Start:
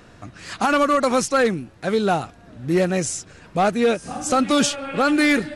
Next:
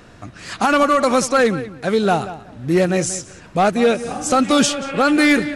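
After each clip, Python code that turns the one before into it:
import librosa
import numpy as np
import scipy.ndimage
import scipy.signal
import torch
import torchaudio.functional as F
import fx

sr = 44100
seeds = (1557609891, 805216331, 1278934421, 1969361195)

y = fx.echo_filtered(x, sr, ms=184, feedback_pct=18, hz=3800.0, wet_db=-14)
y = F.gain(torch.from_numpy(y), 3.0).numpy()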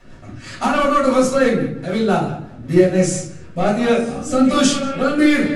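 y = fx.rotary_switch(x, sr, hz=6.0, then_hz=1.2, switch_at_s=2.23)
y = fx.room_shoebox(y, sr, seeds[0], volume_m3=310.0, walls='furnished', distance_m=6.7)
y = F.gain(torch.from_numpy(y), -9.5).numpy()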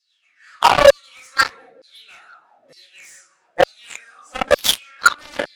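y = fx.filter_lfo_highpass(x, sr, shape='saw_down', hz=1.1, low_hz=530.0, high_hz=4900.0, q=7.1)
y = fx.cheby_harmonics(y, sr, harmonics=(3, 5), levels_db=(-8, -43), full_scale_db=-3.5)
y = F.gain(torch.from_numpy(y), -1.5).numpy()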